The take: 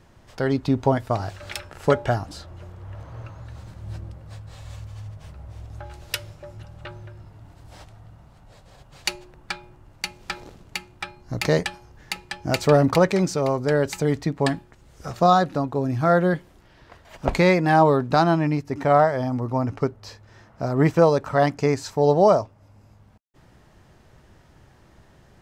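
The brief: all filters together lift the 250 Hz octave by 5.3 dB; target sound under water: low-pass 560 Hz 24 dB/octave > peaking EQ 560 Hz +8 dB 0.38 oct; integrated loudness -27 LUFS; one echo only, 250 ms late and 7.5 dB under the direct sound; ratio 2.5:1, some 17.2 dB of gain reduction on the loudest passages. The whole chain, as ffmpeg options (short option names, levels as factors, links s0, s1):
-af "equalizer=f=250:t=o:g=7,acompressor=threshold=0.0141:ratio=2.5,lowpass=f=560:w=0.5412,lowpass=f=560:w=1.3066,equalizer=f=560:t=o:w=0.38:g=8,aecho=1:1:250:0.422,volume=2.51"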